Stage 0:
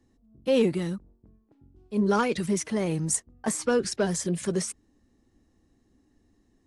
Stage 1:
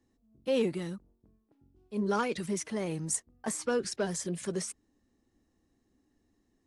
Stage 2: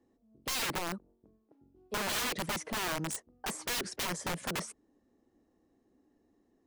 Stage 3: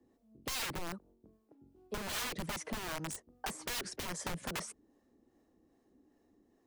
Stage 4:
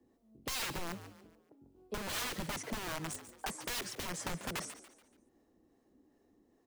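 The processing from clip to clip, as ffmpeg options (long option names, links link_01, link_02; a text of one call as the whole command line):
ffmpeg -i in.wav -af "lowshelf=frequency=190:gain=-5,volume=-5dB" out.wav
ffmpeg -i in.wav -af "equalizer=frequency=520:width=0.4:gain=13.5,aeval=exprs='(mod(11.9*val(0)+1,2)-1)/11.9':channel_layout=same,volume=-7dB" out.wav
ffmpeg -i in.wav -filter_complex "[0:a]acrossover=split=120[link_01][link_02];[link_02]acompressor=threshold=-38dB:ratio=6[link_03];[link_01][link_03]amix=inputs=2:normalize=0,acrossover=split=460[link_04][link_05];[link_04]aeval=exprs='val(0)*(1-0.5/2+0.5/2*cos(2*PI*2.5*n/s))':channel_layout=same[link_06];[link_05]aeval=exprs='val(0)*(1-0.5/2-0.5/2*cos(2*PI*2.5*n/s))':channel_layout=same[link_07];[link_06][link_07]amix=inputs=2:normalize=0,volume=3.5dB" out.wav
ffmpeg -i in.wav -filter_complex "[0:a]asplit=5[link_01][link_02][link_03][link_04][link_05];[link_02]adelay=143,afreqshift=100,volume=-13dB[link_06];[link_03]adelay=286,afreqshift=200,volume=-21.2dB[link_07];[link_04]adelay=429,afreqshift=300,volume=-29.4dB[link_08];[link_05]adelay=572,afreqshift=400,volume=-37.5dB[link_09];[link_01][link_06][link_07][link_08][link_09]amix=inputs=5:normalize=0" out.wav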